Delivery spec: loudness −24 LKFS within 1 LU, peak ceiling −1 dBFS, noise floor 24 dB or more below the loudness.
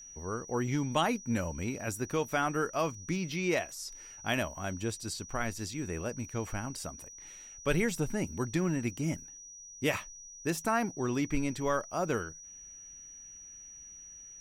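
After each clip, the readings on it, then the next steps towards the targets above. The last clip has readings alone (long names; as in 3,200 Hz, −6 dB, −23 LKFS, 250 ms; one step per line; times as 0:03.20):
interfering tone 5,800 Hz; level of the tone −47 dBFS; integrated loudness −33.5 LKFS; sample peak −15.5 dBFS; target loudness −24.0 LKFS
→ notch filter 5,800 Hz, Q 30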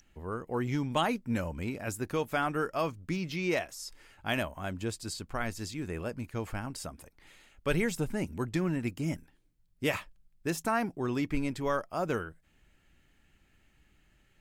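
interfering tone none found; integrated loudness −33.5 LKFS; sample peak −15.5 dBFS; target loudness −24.0 LKFS
→ level +9.5 dB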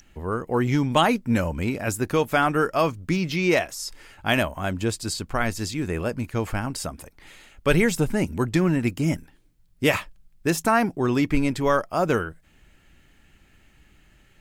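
integrated loudness −24.0 LKFS; sample peak −6.0 dBFS; background noise floor −58 dBFS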